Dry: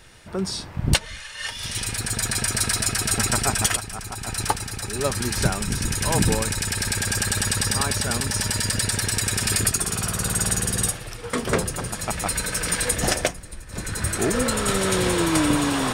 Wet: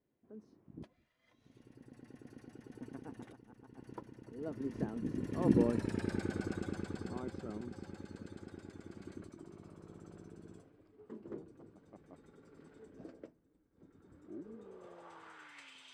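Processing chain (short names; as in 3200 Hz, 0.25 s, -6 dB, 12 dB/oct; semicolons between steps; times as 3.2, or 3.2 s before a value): Doppler pass-by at 5.95, 40 m/s, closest 17 m; band-pass sweep 300 Hz -> 3100 Hz, 14.56–15.76; gain +4 dB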